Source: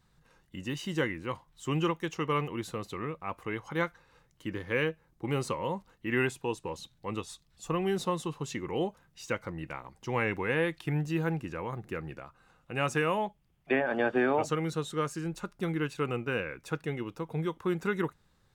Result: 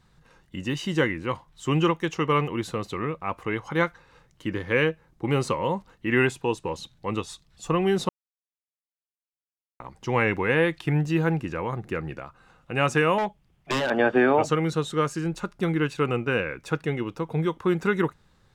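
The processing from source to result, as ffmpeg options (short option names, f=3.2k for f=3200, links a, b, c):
-filter_complex "[0:a]asettb=1/sr,asplit=3[a][b][c];[a]atrim=end=13.184[d];[b]atrim=start=13.18:end=13.9,asetpts=PTS-STARTPTS,afade=t=in:d=0.004:c=qsin,afade=t=out:st=0.716:d=0.004:c=qsin,aeval=exprs='0.0501*(abs(mod(val(0)/0.0501+3,4)-2)-1)':c=same[e];[c]atrim=start=13.896[f];[d][e]acrossfade=d=0.004:c1=hsin:c2=qsin[g];[g][f]acrossfade=d=0.004:c1=qsin:c2=hsin,asplit=3[h][i][j];[h]atrim=end=8.09,asetpts=PTS-STARTPTS,afade=t=out:st=8.086:d=0.004:c=hsin[k];[i]atrim=start=8.09:end=9.8,asetpts=PTS-STARTPTS,volume=0[l];[j]atrim=start=9.8,asetpts=PTS-STARTPTS,afade=t=in:d=0.004:c=hsin[m];[k][l][m]concat=n=3:v=0:a=1,highshelf=f=11k:g=-10.5,volume=7dB"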